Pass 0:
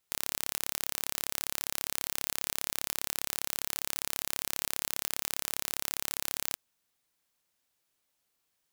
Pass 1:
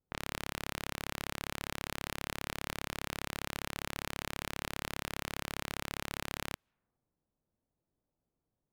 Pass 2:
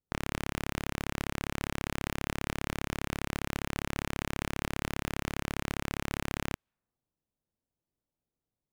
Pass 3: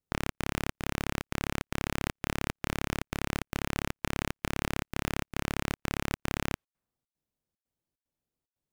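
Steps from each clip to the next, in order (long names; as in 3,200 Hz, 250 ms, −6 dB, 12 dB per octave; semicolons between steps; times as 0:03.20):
low-pass that shuts in the quiet parts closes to 490 Hz, open at −48.5 dBFS; bass and treble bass +7 dB, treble −15 dB; level +2.5 dB
leveller curve on the samples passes 3; in parallel at −3.5 dB: gain into a clipping stage and back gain 18.5 dB; on the sum: level −4 dB
in parallel at −10 dB: bit reduction 6 bits; on the sum: gate pattern "xxx.xxx.x" 149 BPM −60 dB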